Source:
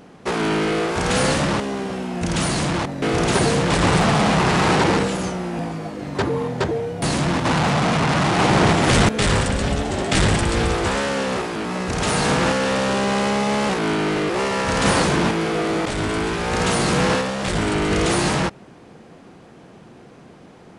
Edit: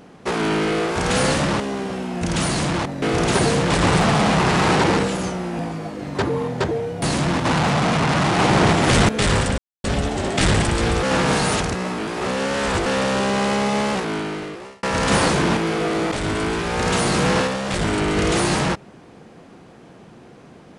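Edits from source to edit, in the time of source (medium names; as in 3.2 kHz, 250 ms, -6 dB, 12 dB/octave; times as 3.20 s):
9.58 s: insert silence 0.26 s
10.77–12.60 s: reverse
13.51–14.57 s: fade out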